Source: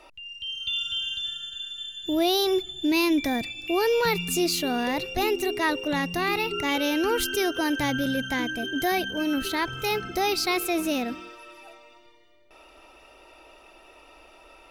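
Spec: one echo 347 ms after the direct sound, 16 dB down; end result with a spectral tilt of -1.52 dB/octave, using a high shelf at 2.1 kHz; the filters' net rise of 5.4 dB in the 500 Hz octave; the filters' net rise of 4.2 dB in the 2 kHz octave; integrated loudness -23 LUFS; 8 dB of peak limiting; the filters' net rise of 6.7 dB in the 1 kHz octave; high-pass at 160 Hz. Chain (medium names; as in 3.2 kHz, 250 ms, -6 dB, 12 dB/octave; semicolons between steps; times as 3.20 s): high-pass 160 Hz; peaking EQ 500 Hz +6 dB; peaking EQ 1 kHz +6.5 dB; peaking EQ 2 kHz +7.5 dB; treble shelf 2.1 kHz -7.5 dB; peak limiter -15.5 dBFS; delay 347 ms -16 dB; trim +2 dB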